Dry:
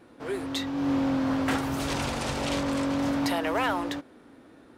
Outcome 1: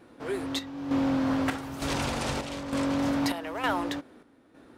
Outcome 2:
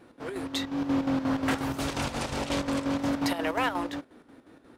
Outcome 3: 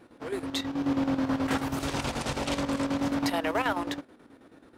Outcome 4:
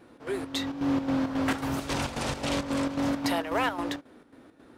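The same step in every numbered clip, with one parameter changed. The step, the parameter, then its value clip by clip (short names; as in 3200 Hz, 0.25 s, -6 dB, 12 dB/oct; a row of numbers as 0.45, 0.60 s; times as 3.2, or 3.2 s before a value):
chopper, rate: 1.1, 5.6, 9.3, 3.7 Hz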